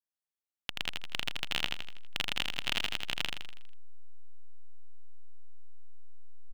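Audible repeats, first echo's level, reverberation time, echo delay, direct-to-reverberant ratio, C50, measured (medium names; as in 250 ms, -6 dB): 6, -4.0 dB, no reverb, 81 ms, no reverb, no reverb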